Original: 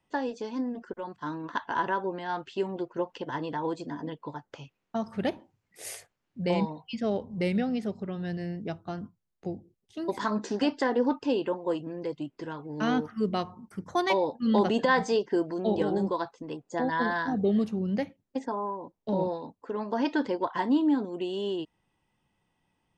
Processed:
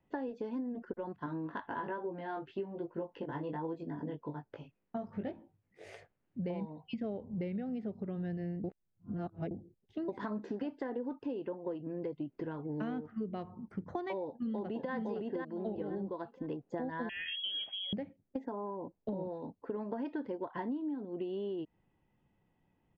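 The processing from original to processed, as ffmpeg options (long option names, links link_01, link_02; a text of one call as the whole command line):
ffmpeg -i in.wav -filter_complex "[0:a]asettb=1/sr,asplit=3[link_01][link_02][link_03];[link_01]atrim=end=1.264[link_04];[link_02]atrim=start=1.26:end=5.93,asetpts=PTS-STARTPTS,afade=type=in:duration=0.004:curve=qsin,afade=type=out:start_time=4.666:duration=0.004:curve=qsin,flanger=delay=18:depth=2.7:speed=1.2[link_05];[link_03]atrim=start=5.926[link_06];[link_04][link_05]acrossfade=duration=0.004:curve1=hsin:curve2=qsin[link_07];[link_07][link_06]acrossfade=duration=0.004:curve1=qsin:curve2=hsin,asplit=2[link_08][link_09];[link_09]afade=type=in:start_time=14.24:duration=0.01,afade=type=out:start_time=14.93:duration=0.01,aecho=0:1:510|1020|1530:0.841395|0.126209|0.0189314[link_10];[link_08][link_10]amix=inputs=2:normalize=0,asettb=1/sr,asplit=3[link_11][link_12][link_13];[link_11]atrim=end=17.094[link_14];[link_12]atrim=start=17.09:end=17.93,asetpts=PTS-STARTPTS,afade=type=in:duration=0.004:curve=qsin,afade=type=out:start_time=0.836:duration=0.004:curve=qsin,lowpass=frequency=3000:width_type=q:width=0.5098,lowpass=frequency=3000:width_type=q:width=0.6013,lowpass=frequency=3000:width_type=q:width=0.9,lowpass=frequency=3000:width_type=q:width=2.563,afreqshift=-3500[link_15];[link_13]atrim=start=17.926[link_16];[link_14][link_15]acrossfade=duration=0.004:curve1=hsin:curve2=qsin[link_17];[link_17][link_16]acrossfade=duration=0.004:curve1=qsin:curve2=hsin,asplit=3[link_18][link_19][link_20];[link_18]atrim=end=8.642[link_21];[link_19]atrim=start=8.638:end=9.512,asetpts=PTS-STARTPTS,areverse[link_22];[link_20]atrim=start=9.508[link_23];[link_21][link_22]acrossfade=duration=0.004:curve1=hsin:curve2=hsin[link_24];[link_24][link_23]acrossfade=duration=0.004:curve1=hsin:curve2=hsin,lowpass=1700,equalizer=frequency=1100:width_type=o:width=1.2:gain=-7,acompressor=threshold=-37dB:ratio=12,volume=2.5dB" out.wav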